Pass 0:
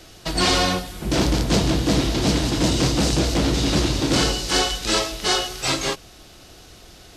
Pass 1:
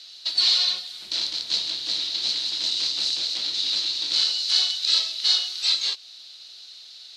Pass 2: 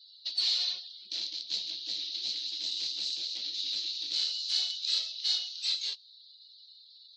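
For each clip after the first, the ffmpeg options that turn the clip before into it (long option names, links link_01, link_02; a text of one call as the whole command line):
ffmpeg -i in.wav -filter_complex "[0:a]asplit=2[link_01][link_02];[link_02]acompressor=threshold=-28dB:ratio=6,volume=1dB[link_03];[link_01][link_03]amix=inputs=2:normalize=0,bandpass=frequency=4100:width_type=q:width=6.8:csg=0,volume=6.5dB" out.wav
ffmpeg -i in.wav -af "afftdn=noise_reduction=26:noise_floor=-44,equalizer=frequency=1200:width=1.2:gain=-7.5,volume=-8.5dB" out.wav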